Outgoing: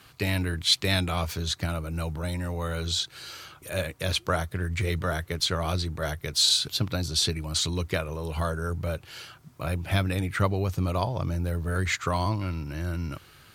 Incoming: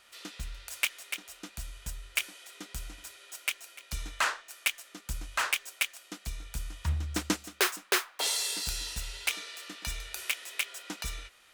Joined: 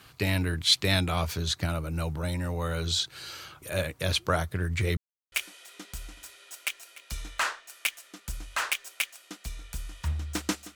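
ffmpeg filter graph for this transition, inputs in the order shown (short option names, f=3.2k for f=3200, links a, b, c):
-filter_complex "[0:a]apad=whole_dur=10.75,atrim=end=10.75,asplit=2[a][b];[a]atrim=end=4.97,asetpts=PTS-STARTPTS,afade=t=out:st=4.966:d=0.004:c=hsin[c];[b]atrim=start=4.97:end=5.32,asetpts=PTS-STARTPTS,volume=0[d];[1:a]atrim=start=2.13:end=7.56,asetpts=PTS-STARTPTS,afade=t=in:d=0.004:c=hsin[e];[c][d][e]concat=n=3:v=0:a=1"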